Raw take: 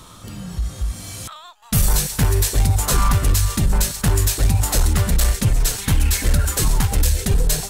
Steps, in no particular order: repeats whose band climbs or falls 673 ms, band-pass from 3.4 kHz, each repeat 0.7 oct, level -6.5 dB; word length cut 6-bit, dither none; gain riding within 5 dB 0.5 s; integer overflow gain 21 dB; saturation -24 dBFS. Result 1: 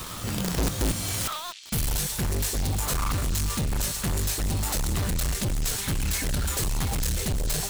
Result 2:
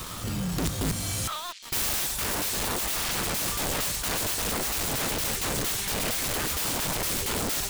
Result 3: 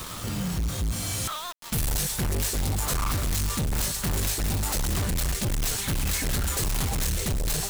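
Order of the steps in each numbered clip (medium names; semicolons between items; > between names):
saturation > gain riding > word length cut > integer overflow > repeats whose band climbs or falls; integer overflow > gain riding > word length cut > saturation > repeats whose band climbs or falls; gain riding > saturation > repeats whose band climbs or falls > word length cut > integer overflow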